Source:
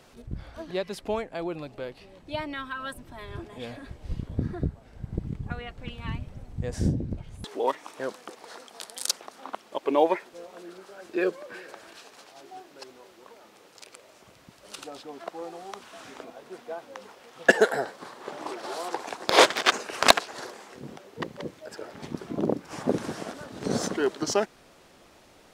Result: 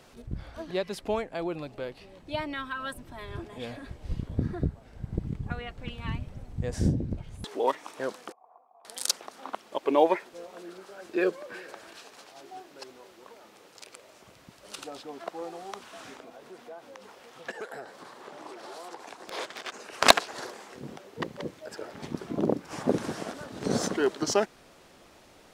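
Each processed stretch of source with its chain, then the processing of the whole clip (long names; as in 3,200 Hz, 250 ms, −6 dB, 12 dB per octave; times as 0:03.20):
0:08.32–0:08.85: formant resonators in series a + high-frequency loss of the air 280 metres
0:16.14–0:20.02: downward compressor 2 to 1, threshold −45 dBFS + saturating transformer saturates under 3,600 Hz
whole clip: no processing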